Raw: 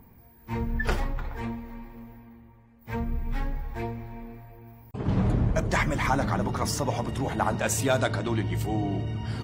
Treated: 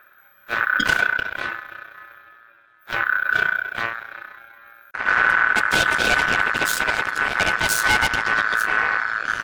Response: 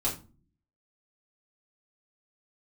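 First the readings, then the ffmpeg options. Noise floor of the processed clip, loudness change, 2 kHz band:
-54 dBFS, +9.0 dB, +19.0 dB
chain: -af "aeval=exprs='0.266*(cos(1*acos(clip(val(0)/0.266,-1,1)))-cos(1*PI/2))+0.0944*(cos(8*acos(clip(val(0)/0.266,-1,1)))-cos(8*PI/2))':c=same,aeval=exprs='val(0)*sin(2*PI*1500*n/s)':c=same,volume=1.5"

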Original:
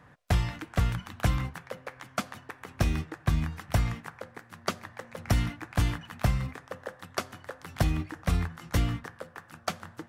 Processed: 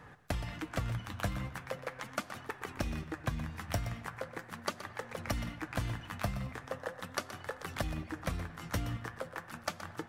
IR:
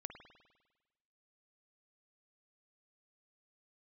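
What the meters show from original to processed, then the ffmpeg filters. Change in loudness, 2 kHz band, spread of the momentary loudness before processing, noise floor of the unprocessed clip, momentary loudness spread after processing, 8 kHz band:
-8.0 dB, -3.5 dB, 14 LU, -56 dBFS, 5 LU, -4.5 dB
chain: -filter_complex "[0:a]acompressor=threshold=0.0141:ratio=4,flanger=delay=2.3:depth=7.8:regen=54:speed=0.4:shape=sinusoidal,asplit=2[s0][s1];[1:a]atrim=start_sample=2205,adelay=122[s2];[s1][s2]afir=irnorm=-1:irlink=0,volume=0.422[s3];[s0][s3]amix=inputs=2:normalize=0,volume=2.24"

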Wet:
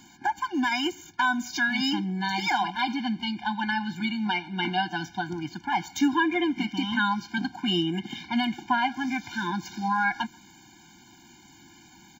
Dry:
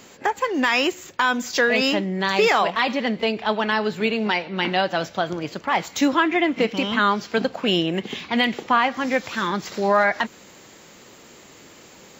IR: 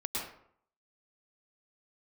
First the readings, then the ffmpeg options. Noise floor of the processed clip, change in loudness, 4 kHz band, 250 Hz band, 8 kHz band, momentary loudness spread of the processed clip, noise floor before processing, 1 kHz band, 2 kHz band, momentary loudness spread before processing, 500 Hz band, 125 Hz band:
-54 dBFS, -6.0 dB, -5.0 dB, -3.0 dB, -6.0 dB, 6 LU, -47 dBFS, -5.0 dB, -5.5 dB, 7 LU, -16.0 dB, -3.0 dB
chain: -filter_complex "[0:a]asplit=2[s0][s1];[s1]adelay=140,highpass=300,lowpass=3400,asoftclip=type=hard:threshold=0.168,volume=0.0398[s2];[s0][s2]amix=inputs=2:normalize=0,afftfilt=real='re*eq(mod(floor(b*sr/1024/350),2),0)':imag='im*eq(mod(floor(b*sr/1024/350),2),0)':win_size=1024:overlap=0.75,volume=0.708"

